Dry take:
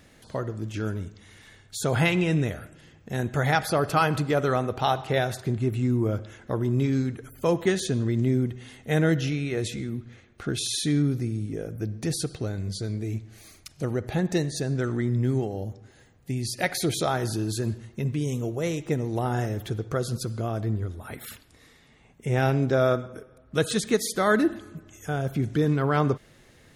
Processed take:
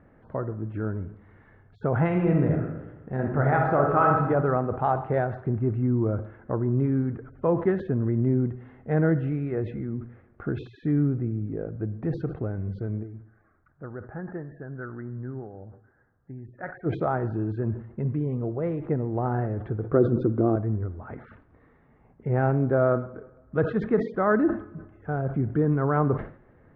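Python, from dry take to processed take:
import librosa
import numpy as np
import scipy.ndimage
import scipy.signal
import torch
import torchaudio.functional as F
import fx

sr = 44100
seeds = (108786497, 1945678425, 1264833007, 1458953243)

y = fx.reverb_throw(x, sr, start_s=2.06, length_s=2.18, rt60_s=1.1, drr_db=0.5)
y = fx.ladder_lowpass(y, sr, hz=1700.0, resonance_pct=65, at=(13.02, 16.85), fade=0.02)
y = fx.small_body(y, sr, hz=(310.0, 3600.0), ring_ms=25, db=16, at=(19.94, 20.56))
y = scipy.signal.sosfilt(scipy.signal.butter(4, 1500.0, 'lowpass', fs=sr, output='sos'), y)
y = fx.sustainer(y, sr, db_per_s=130.0)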